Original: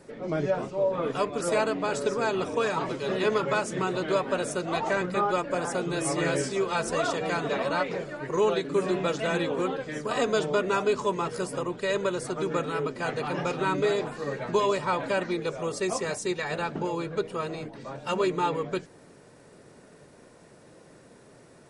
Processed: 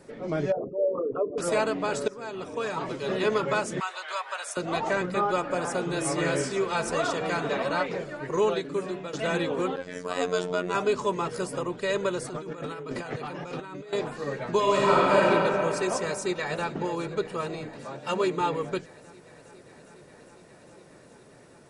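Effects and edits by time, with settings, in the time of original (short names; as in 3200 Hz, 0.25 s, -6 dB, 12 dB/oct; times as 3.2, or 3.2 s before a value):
0.52–1.38 formant sharpening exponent 3
2.08–3.12 fade in, from -15.5 dB
3.8–4.57 HPF 830 Hz 24 dB/oct
5.25–7.86 band-limited delay 67 ms, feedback 81%, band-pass 1400 Hz, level -14.5 dB
8.42–9.13 fade out, to -12 dB
9.76–10.75 robotiser 89.7 Hz
12.29–13.93 negative-ratio compressor -37 dBFS
14.61–15.26 reverb throw, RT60 3 s, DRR -6 dB
16.01–16.66 echo throw 0.41 s, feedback 85%, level -17 dB
17.83–18.41 HPF 120 Hz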